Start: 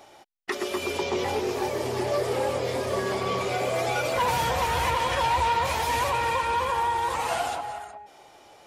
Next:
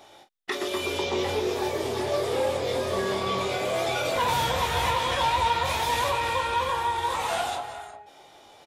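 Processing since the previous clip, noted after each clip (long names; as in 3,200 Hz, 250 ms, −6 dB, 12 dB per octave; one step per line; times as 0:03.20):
parametric band 3,600 Hz +8 dB 0.22 octaves
on a send: ambience of single reflections 21 ms −6 dB, 46 ms −10.5 dB
on the sum: level −1.5 dB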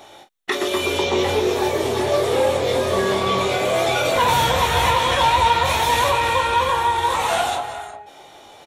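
notch filter 4,900 Hz, Q 9.1
level +7.5 dB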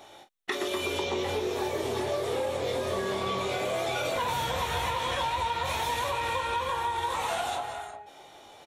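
downward compressor, threshold −20 dBFS, peak gain reduction 8 dB
level −6.5 dB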